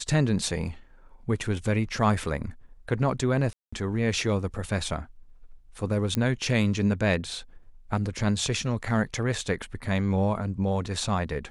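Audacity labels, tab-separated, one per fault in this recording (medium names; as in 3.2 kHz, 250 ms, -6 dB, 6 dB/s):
3.530000	3.730000	dropout 195 ms
6.150000	6.150000	pop -12 dBFS
9.410000	9.410000	dropout 2.1 ms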